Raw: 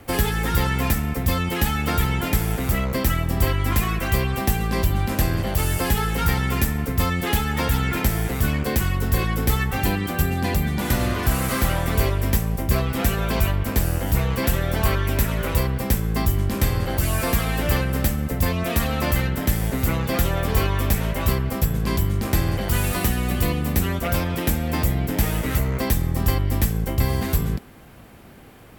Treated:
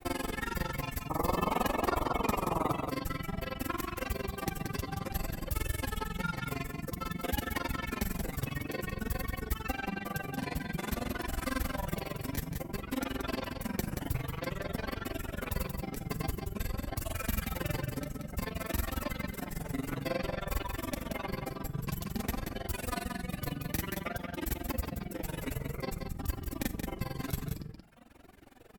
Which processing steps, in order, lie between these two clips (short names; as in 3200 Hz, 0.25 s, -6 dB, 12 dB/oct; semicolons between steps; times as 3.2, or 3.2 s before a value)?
notch 3200 Hz, Q 27; reverb removal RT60 1.2 s; notches 50/100/150 Hz; compressor 2:1, threshold -26 dBFS, peak gain reduction 6.5 dB; painted sound noise, 1.1–2.77, 210–1300 Hz -26 dBFS; grains 45 ms, grains 22/s, spray 55 ms, pitch spread up and down by 0 st; flange 0.53 Hz, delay 2.6 ms, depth 4.8 ms, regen +31%; echo 0.179 s -6 dB; on a send at -16.5 dB: reverb RT60 0.45 s, pre-delay 32 ms